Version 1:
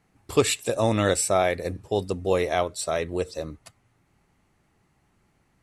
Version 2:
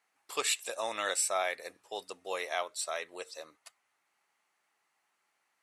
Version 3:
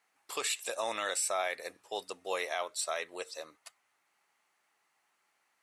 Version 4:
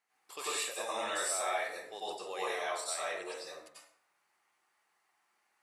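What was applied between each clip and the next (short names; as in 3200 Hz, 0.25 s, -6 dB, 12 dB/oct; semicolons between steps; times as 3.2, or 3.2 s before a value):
HPF 900 Hz 12 dB/oct; gain -4.5 dB
limiter -24 dBFS, peak gain reduction 7 dB; gain +2 dB
plate-style reverb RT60 0.65 s, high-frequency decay 0.65×, pre-delay 80 ms, DRR -8 dB; gain -9 dB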